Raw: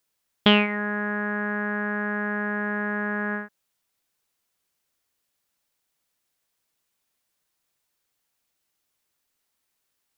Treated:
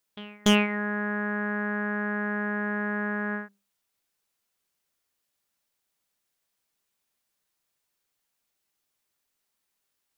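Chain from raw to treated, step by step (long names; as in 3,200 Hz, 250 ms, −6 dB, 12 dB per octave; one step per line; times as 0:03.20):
mains-hum notches 60/120/180 Hz
tuned comb filter 200 Hz, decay 0.32 s, harmonics all, mix 50%
backwards echo 289 ms −22.5 dB
wave folding −14 dBFS
level +2.5 dB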